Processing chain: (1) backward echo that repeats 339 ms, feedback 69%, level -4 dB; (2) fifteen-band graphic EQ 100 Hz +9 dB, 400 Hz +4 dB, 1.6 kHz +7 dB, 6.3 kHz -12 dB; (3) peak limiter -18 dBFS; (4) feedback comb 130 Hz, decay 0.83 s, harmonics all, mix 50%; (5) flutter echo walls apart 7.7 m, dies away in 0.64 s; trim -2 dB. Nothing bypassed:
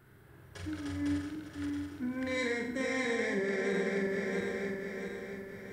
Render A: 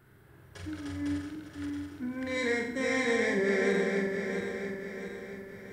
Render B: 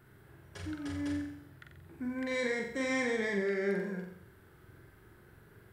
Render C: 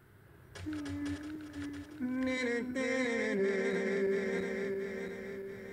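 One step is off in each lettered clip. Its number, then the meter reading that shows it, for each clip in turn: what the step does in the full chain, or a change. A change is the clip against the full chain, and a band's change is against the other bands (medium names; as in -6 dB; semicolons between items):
3, crest factor change +2.0 dB; 1, crest factor change +1.5 dB; 5, echo-to-direct -2.0 dB to none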